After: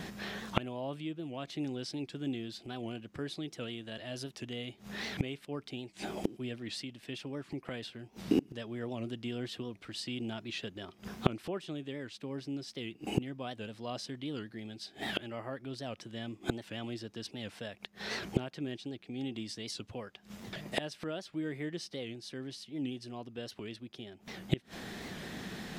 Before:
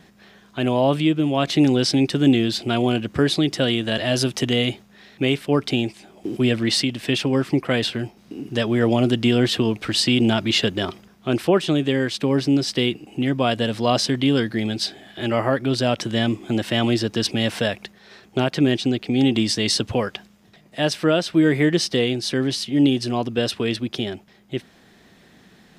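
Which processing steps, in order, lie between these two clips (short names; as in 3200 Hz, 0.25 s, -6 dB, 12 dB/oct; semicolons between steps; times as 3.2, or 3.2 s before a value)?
flipped gate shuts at -24 dBFS, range -29 dB; record warp 78 rpm, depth 160 cents; gain +8.5 dB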